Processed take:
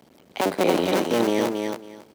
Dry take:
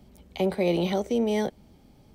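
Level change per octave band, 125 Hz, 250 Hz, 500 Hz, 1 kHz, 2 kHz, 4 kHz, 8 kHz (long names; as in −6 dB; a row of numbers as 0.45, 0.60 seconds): −2.0, +3.0, +3.5, +8.5, +8.0, +6.5, +10.5 decibels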